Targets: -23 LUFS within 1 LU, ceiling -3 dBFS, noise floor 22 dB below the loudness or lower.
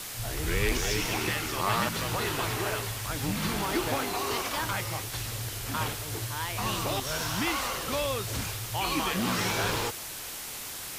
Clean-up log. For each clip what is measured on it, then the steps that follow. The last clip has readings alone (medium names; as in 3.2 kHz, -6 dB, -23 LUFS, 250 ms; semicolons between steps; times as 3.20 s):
noise floor -39 dBFS; noise floor target -52 dBFS; loudness -30.0 LUFS; peak level -14.5 dBFS; loudness target -23.0 LUFS
-> noise print and reduce 13 dB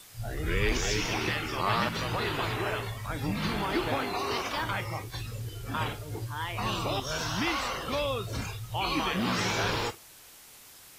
noise floor -52 dBFS; noise floor target -53 dBFS
-> noise print and reduce 6 dB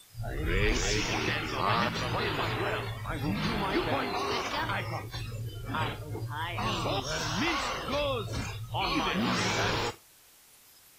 noise floor -58 dBFS; loudness -31.0 LUFS; peak level -15.0 dBFS; loudness target -23.0 LUFS
-> trim +8 dB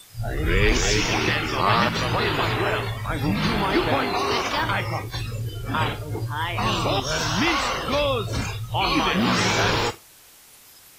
loudness -23.0 LUFS; peak level -7.0 dBFS; noise floor -50 dBFS